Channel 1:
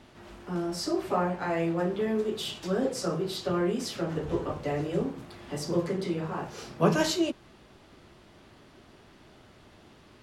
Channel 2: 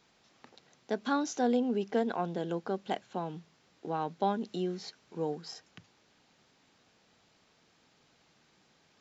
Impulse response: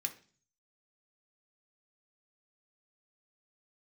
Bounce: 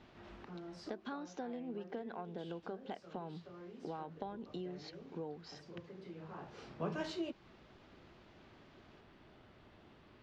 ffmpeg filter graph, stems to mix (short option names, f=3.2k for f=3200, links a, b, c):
-filter_complex "[0:a]acompressor=threshold=-34dB:ratio=2,volume=-6.5dB[a];[1:a]acompressor=threshold=-39dB:ratio=12,volume=-1dB,asplit=2[b][c];[c]apad=whole_len=450735[d];[a][d]sidechaincompress=threshold=-54dB:ratio=6:attack=6.6:release=1350[e];[e][b]amix=inputs=2:normalize=0,lowpass=3.6k"